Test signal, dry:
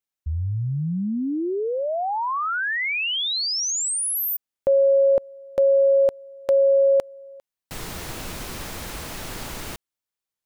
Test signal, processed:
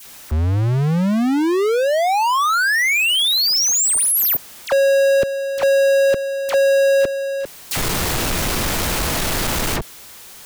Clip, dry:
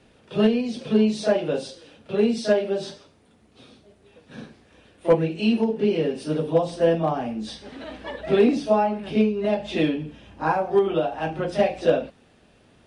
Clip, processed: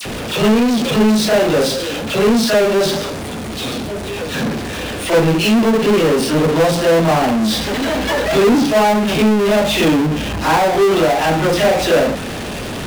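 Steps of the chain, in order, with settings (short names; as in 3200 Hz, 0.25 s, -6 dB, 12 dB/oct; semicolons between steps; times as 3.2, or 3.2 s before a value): dispersion lows, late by 55 ms, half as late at 1700 Hz; power-law curve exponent 0.35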